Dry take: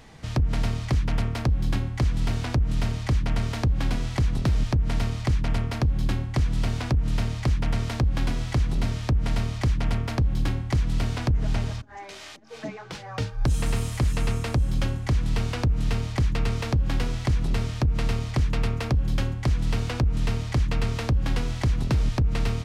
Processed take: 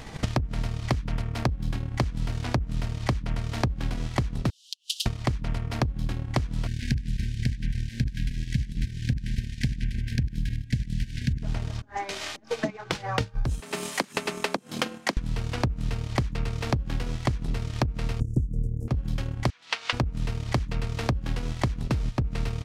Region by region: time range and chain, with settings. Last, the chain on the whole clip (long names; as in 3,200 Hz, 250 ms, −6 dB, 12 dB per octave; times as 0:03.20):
0:04.50–0:05.06: Butterworth high-pass 2,900 Hz 96 dB per octave + comb filter 5.5 ms, depth 48%
0:06.67–0:11.43: delay that plays each chunk backwards 137 ms, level −6 dB + linear-phase brick-wall band-stop 270–1,500 Hz
0:13.60–0:15.17: Butterworth high-pass 240 Hz + frequency shifter −46 Hz
0:18.20–0:18.88: inverse Chebyshev band-stop filter 790–4,200 Hz + low-shelf EQ 380 Hz +9 dB
0:19.50–0:19.93: band-pass filter 640–4,700 Hz + tilt shelving filter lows −7.5 dB, about 840 Hz
whole clip: transient designer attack +10 dB, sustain −10 dB; downward compressor 6 to 1, threshold −32 dBFS; level +7.5 dB